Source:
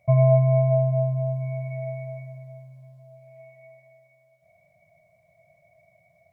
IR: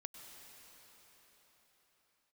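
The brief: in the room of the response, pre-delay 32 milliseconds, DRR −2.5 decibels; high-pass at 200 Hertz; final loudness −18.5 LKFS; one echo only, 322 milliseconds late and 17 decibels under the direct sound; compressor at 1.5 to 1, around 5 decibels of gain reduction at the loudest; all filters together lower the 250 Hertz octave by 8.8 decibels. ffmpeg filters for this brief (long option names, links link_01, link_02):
-filter_complex "[0:a]highpass=200,equalizer=frequency=250:width_type=o:gain=-3.5,acompressor=threshold=-31dB:ratio=1.5,aecho=1:1:322:0.141,asplit=2[link_01][link_02];[1:a]atrim=start_sample=2205,adelay=32[link_03];[link_02][link_03]afir=irnorm=-1:irlink=0,volume=6.5dB[link_04];[link_01][link_04]amix=inputs=2:normalize=0,volume=5.5dB"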